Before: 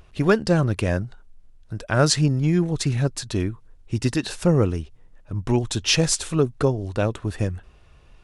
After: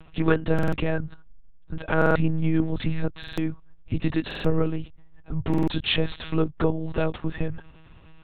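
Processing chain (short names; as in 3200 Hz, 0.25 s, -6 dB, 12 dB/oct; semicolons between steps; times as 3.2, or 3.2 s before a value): in parallel at +2.5 dB: compressor, threshold -26 dBFS, peak gain reduction 13.5 dB; on the sum: monotone LPC vocoder at 8 kHz 160 Hz; stuck buffer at 0.54/1.97/3.19/4.26/5.49, samples 2048, times 3; gain -5 dB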